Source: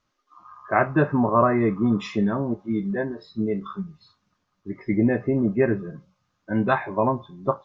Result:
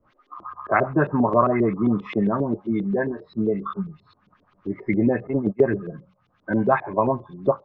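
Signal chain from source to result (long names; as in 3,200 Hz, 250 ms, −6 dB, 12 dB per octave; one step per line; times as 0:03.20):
auto-filter low-pass saw up 7.5 Hz 340–3,700 Hz
0:05.27–0:05.70: noise gate −19 dBFS, range −23 dB
multiband upward and downward compressor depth 40%
level −1 dB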